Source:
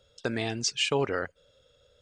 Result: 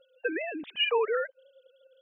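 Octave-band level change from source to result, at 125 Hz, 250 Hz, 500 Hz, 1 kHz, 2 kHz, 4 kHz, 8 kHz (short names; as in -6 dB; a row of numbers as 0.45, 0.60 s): under -35 dB, -5.0 dB, +2.0 dB, +1.5 dB, +1.5 dB, -0.5 dB, under -40 dB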